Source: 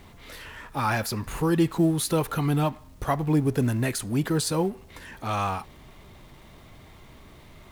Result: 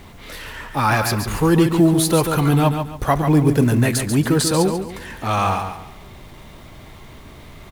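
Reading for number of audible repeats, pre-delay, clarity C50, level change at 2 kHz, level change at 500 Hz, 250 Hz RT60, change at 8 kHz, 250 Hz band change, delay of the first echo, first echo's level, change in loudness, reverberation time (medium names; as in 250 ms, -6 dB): 3, no reverb, no reverb, +8.5 dB, +8.0 dB, no reverb, +8.5 dB, +8.0 dB, 140 ms, -7.0 dB, +8.0 dB, no reverb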